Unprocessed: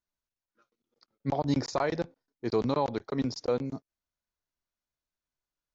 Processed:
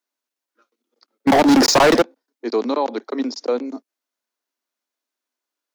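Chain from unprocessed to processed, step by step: steep high-pass 230 Hz 72 dB/octave; 1.27–2.02 s: waveshaping leveller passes 5; trim +7.5 dB

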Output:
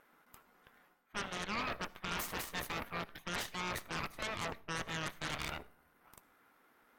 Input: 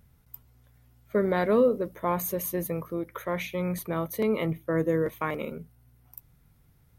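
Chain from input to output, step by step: treble shelf 2.7 kHz -8 dB; spectral gate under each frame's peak -15 dB weak; peaking EQ 1.4 kHz +12 dB 1.6 oct; reverse; compression 6:1, threshold -42 dBFS, peak gain reduction 17.5 dB; reverse; Chebyshev shaper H 8 -8 dB, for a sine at -29 dBFS; on a send: reverberation RT60 0.45 s, pre-delay 58 ms, DRR 21 dB; on the sum: trim +1 dB

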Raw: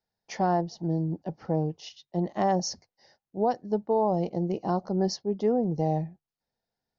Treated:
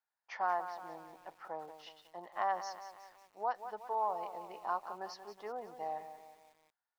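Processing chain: ladder band-pass 1.4 kHz, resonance 45%; bit-crushed delay 183 ms, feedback 55%, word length 11-bit, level -10.5 dB; trim +8.5 dB

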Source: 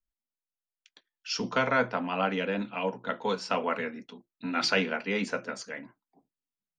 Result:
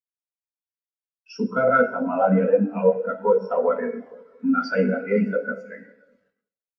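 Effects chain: fifteen-band graphic EQ 100 Hz -4 dB, 630 Hz +3 dB, 1.6 kHz +4 dB, 4 kHz -10 dB; in parallel at -3 dB: compression 6:1, threshold -35 dBFS, peak gain reduction 16.5 dB; on the sum: waveshaping leveller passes 3; echo that smears into a reverb 526 ms, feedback 42%, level -12 dB; bit crusher 5-bit; plate-style reverb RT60 1.5 s, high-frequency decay 0.8×, DRR 1.5 dB; spectral contrast expander 2.5:1; trim -5 dB

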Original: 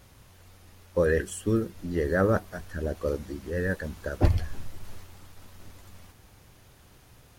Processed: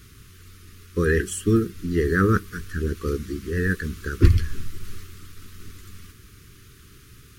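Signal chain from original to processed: Chebyshev band-stop 420–1200 Hz, order 3; trim +7 dB

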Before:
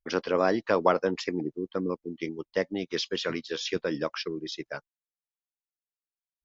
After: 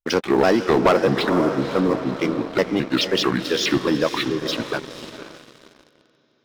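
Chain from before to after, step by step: pitch shift switched off and on -5 st, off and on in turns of 215 ms; echo that smears into a reverb 508 ms, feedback 52%, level -10 dB; waveshaping leveller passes 3

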